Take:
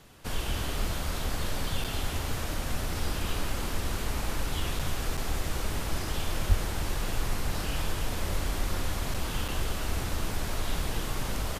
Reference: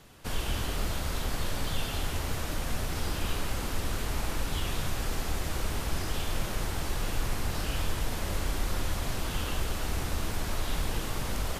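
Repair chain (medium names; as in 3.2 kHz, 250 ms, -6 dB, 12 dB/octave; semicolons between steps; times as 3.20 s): de-plosive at 6.48 s; interpolate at 1.84/4.79/5.17/9.14/9.48 s, 6 ms; inverse comb 312 ms -10 dB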